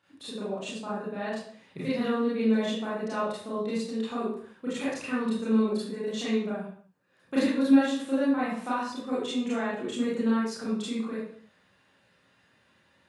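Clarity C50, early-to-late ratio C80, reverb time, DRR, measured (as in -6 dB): 0.0 dB, 4.0 dB, no single decay rate, -10.0 dB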